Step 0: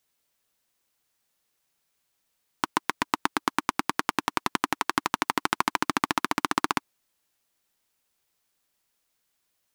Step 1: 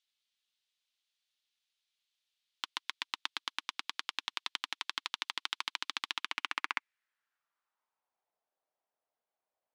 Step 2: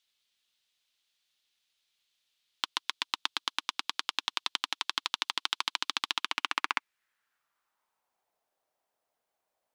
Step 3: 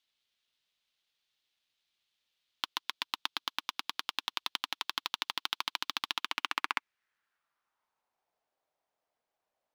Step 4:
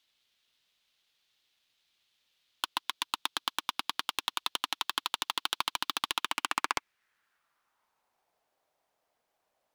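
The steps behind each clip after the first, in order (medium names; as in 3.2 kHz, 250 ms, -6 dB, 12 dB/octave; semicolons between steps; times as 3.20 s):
band-pass sweep 3.5 kHz -> 680 Hz, 6.06–8.40 s
dynamic bell 2 kHz, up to -5 dB, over -54 dBFS, Q 1.7; trim +7 dB
median filter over 5 samples; trim -2 dB
sine folder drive 6 dB, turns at -10.5 dBFS; trim -3 dB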